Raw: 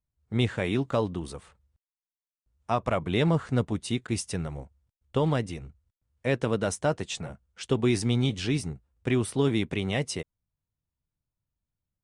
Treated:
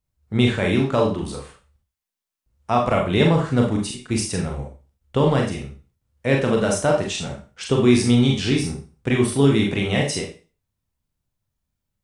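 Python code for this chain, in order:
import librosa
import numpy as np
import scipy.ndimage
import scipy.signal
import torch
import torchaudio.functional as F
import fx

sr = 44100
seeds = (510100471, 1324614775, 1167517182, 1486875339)

y = fx.auto_swell(x, sr, attack_ms=380.0, at=(3.22, 4.11))
y = fx.rev_schroeder(y, sr, rt60_s=0.35, comb_ms=29, drr_db=0.0)
y = y * librosa.db_to_amplitude(5.0)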